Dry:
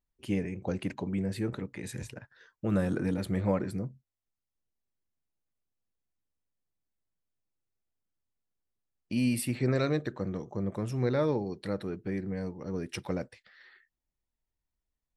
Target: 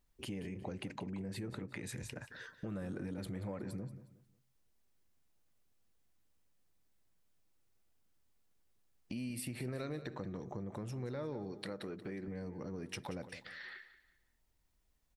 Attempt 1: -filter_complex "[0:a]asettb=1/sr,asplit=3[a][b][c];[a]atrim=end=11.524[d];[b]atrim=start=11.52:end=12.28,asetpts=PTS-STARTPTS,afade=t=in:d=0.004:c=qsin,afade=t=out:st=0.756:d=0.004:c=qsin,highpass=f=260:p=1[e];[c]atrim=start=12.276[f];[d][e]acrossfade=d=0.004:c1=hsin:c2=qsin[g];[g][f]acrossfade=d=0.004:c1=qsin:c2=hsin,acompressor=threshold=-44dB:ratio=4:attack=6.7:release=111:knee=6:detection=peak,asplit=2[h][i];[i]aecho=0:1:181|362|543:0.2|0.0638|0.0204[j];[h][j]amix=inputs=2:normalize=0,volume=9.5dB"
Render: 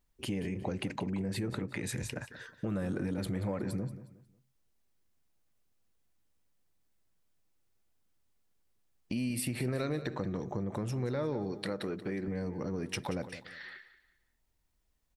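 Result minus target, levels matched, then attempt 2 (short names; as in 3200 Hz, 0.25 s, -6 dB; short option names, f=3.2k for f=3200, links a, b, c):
compressor: peak gain reduction -7.5 dB
-filter_complex "[0:a]asettb=1/sr,asplit=3[a][b][c];[a]atrim=end=11.524[d];[b]atrim=start=11.52:end=12.28,asetpts=PTS-STARTPTS,afade=t=in:d=0.004:c=qsin,afade=t=out:st=0.756:d=0.004:c=qsin,highpass=f=260:p=1[e];[c]atrim=start=12.276[f];[d][e]acrossfade=d=0.004:c1=hsin:c2=qsin[g];[g][f]acrossfade=d=0.004:c1=qsin:c2=hsin,acompressor=threshold=-54dB:ratio=4:attack=6.7:release=111:knee=6:detection=peak,asplit=2[h][i];[i]aecho=0:1:181|362|543:0.2|0.0638|0.0204[j];[h][j]amix=inputs=2:normalize=0,volume=9.5dB"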